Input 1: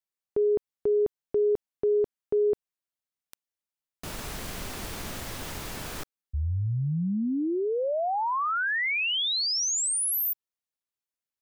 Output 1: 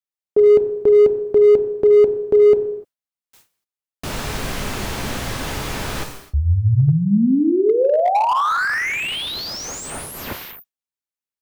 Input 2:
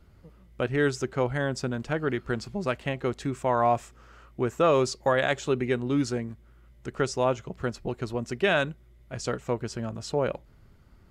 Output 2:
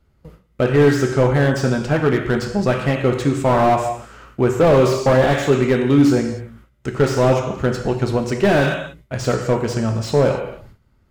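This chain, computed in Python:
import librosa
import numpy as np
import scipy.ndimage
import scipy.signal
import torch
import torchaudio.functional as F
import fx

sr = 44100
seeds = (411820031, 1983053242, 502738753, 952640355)

p1 = fx.rev_gated(x, sr, seeds[0], gate_ms=320, shape='falling', drr_db=4.5)
p2 = np.clip(p1, -10.0 ** (-19.0 / 20.0), 10.0 ** (-19.0 / 20.0))
p3 = p1 + F.gain(torch.from_numpy(p2), -4.5).numpy()
p4 = fx.gate_hold(p3, sr, open_db=-38.0, close_db=-47.0, hold_ms=29.0, range_db=-15, attack_ms=1.5, release_ms=90.0)
p5 = fx.slew_limit(p4, sr, full_power_hz=84.0)
y = F.gain(torch.from_numpy(p5), 6.5).numpy()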